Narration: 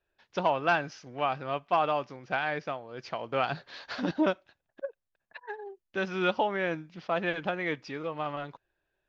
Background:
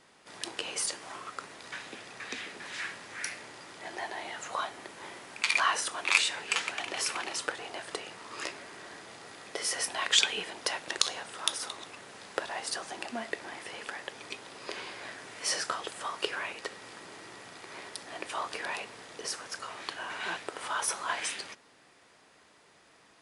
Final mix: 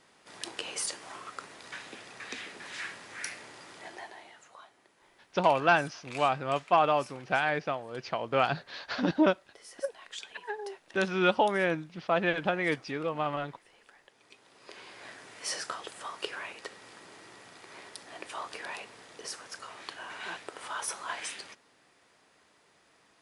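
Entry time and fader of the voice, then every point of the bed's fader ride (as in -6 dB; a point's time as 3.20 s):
5.00 s, +2.5 dB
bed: 3.78 s -1.5 dB
4.58 s -19 dB
14.10 s -19 dB
15.09 s -4 dB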